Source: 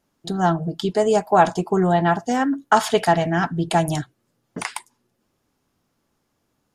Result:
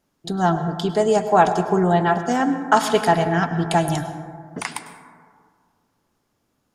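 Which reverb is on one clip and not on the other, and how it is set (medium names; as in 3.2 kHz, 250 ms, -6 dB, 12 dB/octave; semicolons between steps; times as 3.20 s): plate-style reverb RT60 1.9 s, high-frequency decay 0.3×, pre-delay 90 ms, DRR 9 dB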